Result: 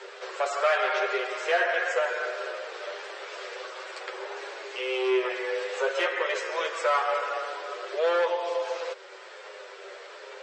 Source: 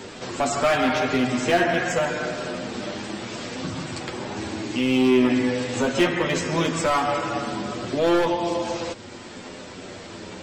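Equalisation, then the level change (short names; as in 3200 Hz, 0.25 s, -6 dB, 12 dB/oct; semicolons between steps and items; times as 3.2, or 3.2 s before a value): rippled Chebyshev high-pass 380 Hz, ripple 6 dB; Bessel low-pass 5200 Hz, order 2; 0.0 dB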